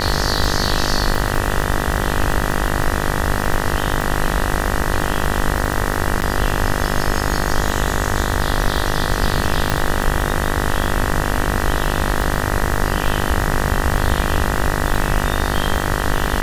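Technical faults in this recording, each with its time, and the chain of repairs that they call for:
buzz 50 Hz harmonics 39 -22 dBFS
crackle 28/s -20 dBFS
6.21–6.22 gap 9.9 ms
9.7 pop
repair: de-click; de-hum 50 Hz, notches 39; interpolate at 6.21, 9.9 ms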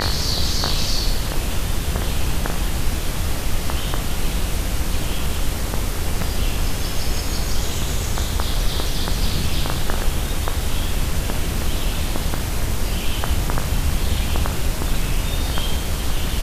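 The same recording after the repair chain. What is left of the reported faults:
none

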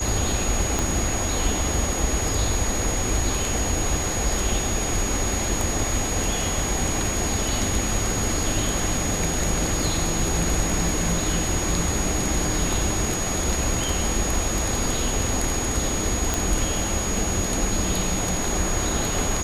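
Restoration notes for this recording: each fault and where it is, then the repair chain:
tone 6700 Hz -28 dBFS
0.79 pop
16.34 pop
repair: de-click; notch 6700 Hz, Q 30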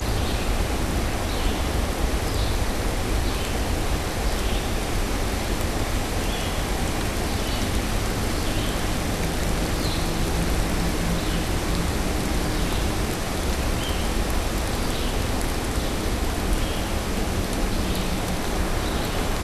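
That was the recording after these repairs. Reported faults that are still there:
0.79 pop

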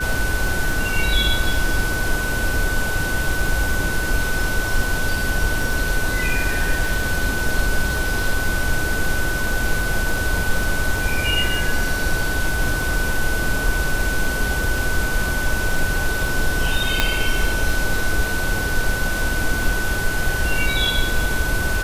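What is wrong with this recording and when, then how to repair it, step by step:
crackle 32/s -26 dBFS
tone 1500 Hz -24 dBFS
17 pop -1 dBFS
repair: de-click; notch 1500 Hz, Q 30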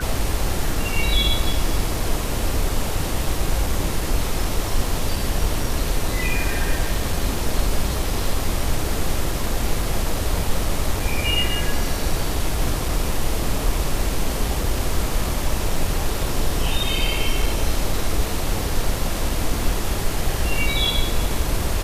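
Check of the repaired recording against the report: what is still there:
none

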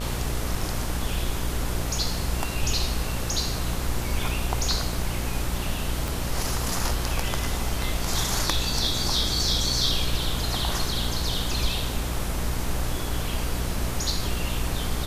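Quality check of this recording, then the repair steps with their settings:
buzz 60 Hz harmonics 28 -31 dBFS
6.08 pop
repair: de-click; de-hum 60 Hz, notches 28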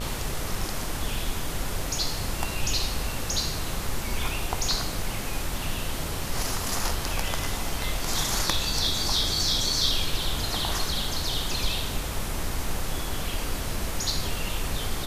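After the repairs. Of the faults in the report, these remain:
6.08 pop

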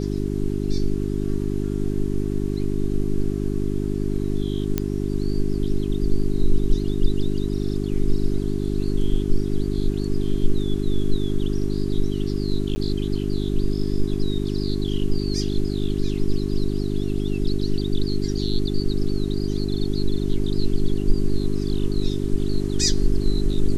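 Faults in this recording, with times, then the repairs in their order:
hum 50 Hz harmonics 8 -25 dBFS
4.78 pop -8 dBFS
12.75–12.76 gap 10 ms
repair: de-click; de-hum 50 Hz, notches 8; interpolate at 12.75, 10 ms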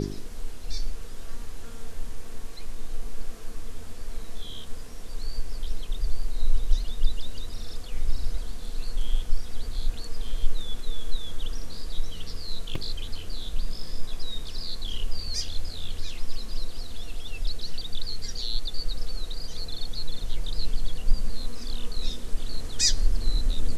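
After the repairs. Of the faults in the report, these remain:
none

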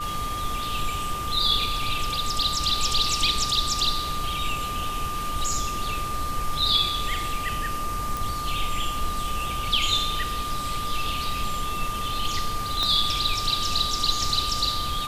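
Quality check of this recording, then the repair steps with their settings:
tone 1200 Hz -29 dBFS
8.17 pop
12.83 pop -11 dBFS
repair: de-click; notch 1200 Hz, Q 30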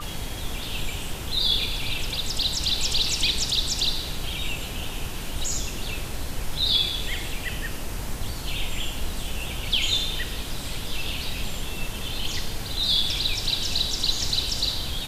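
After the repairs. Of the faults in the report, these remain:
12.83 pop

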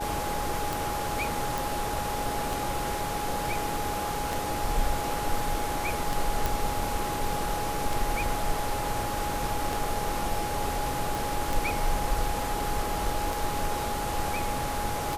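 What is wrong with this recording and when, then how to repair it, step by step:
tick 33 1/3 rpm
tone 830 Hz -32 dBFS
1.58 pop
6.46 pop
11.15 pop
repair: de-click; notch 830 Hz, Q 30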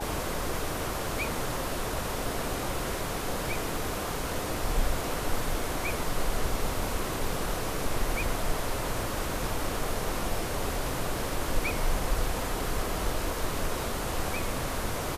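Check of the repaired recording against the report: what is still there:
none

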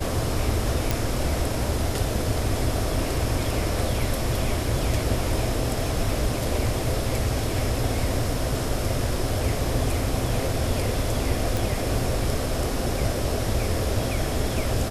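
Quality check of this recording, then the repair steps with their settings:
0.91 pop
11.57 pop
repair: de-click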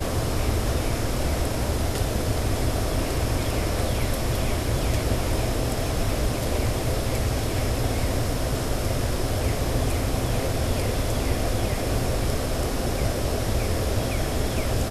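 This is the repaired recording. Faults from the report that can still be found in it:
none

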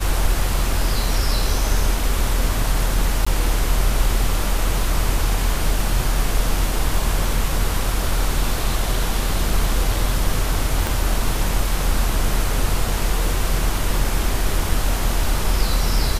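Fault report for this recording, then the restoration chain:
3.25–3.27 gap 15 ms
10.87 pop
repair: de-click; interpolate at 3.25, 15 ms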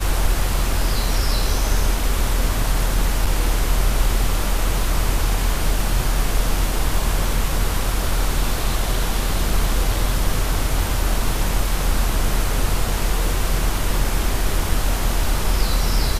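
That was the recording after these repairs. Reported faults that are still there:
10.87 pop

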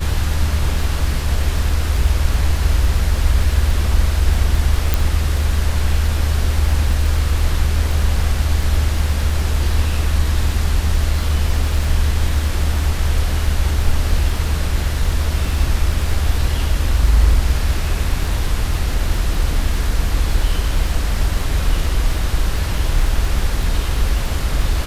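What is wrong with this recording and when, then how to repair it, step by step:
crackle 25/s -23 dBFS
4.94 pop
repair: de-click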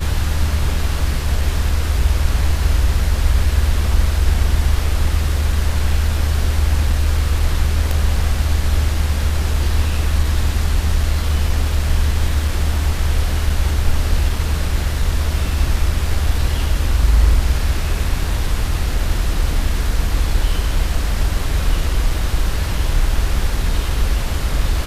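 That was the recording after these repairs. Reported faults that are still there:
none

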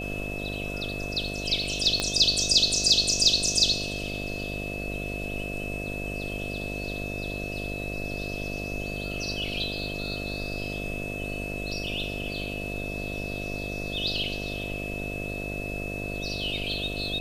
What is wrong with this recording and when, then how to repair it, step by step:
buzz 50 Hz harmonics 14 -35 dBFS
tone 2600 Hz -35 dBFS
2 pop -11 dBFS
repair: de-click; notch 2600 Hz, Q 30; de-hum 50 Hz, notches 14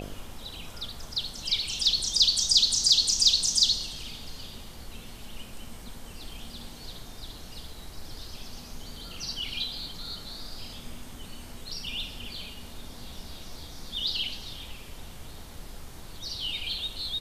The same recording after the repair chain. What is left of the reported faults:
2 pop

